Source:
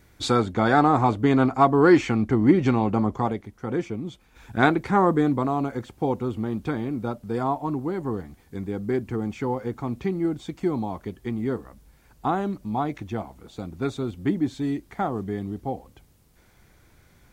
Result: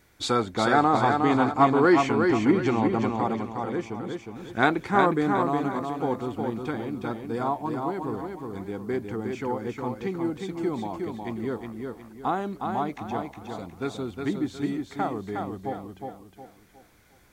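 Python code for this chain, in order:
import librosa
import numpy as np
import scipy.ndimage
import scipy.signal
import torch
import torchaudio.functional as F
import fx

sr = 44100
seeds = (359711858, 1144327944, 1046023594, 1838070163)

p1 = fx.low_shelf(x, sr, hz=240.0, db=-8.0)
p2 = p1 + fx.echo_feedback(p1, sr, ms=362, feedback_pct=36, wet_db=-4.5, dry=0)
y = p2 * 10.0 ** (-1.0 / 20.0)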